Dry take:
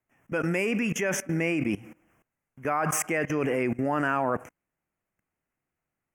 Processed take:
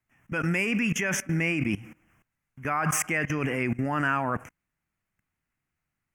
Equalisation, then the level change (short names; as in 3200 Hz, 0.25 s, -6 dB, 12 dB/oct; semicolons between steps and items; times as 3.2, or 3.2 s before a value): bell 500 Hz -12.5 dB 2.1 oct; high shelf 4400 Hz -7 dB; +6.5 dB